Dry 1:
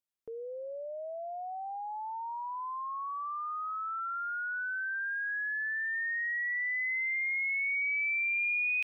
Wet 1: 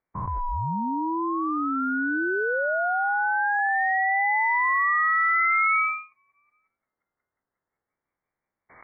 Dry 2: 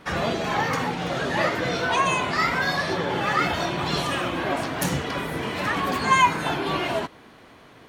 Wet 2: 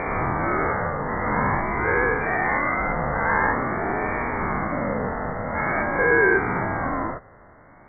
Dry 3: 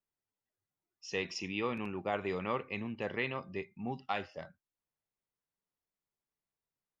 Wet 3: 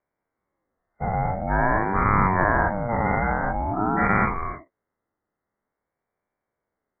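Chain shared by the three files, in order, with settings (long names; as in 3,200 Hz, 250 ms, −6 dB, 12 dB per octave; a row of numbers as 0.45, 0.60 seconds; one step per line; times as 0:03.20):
every bin's largest magnitude spread in time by 240 ms
linear-phase brick-wall low-pass 1,800 Hz
ring modulator whose carrier an LFO sweeps 460 Hz, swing 30%, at 0.48 Hz
loudness normalisation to −23 LKFS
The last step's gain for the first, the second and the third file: +13.5, −2.0, +12.5 decibels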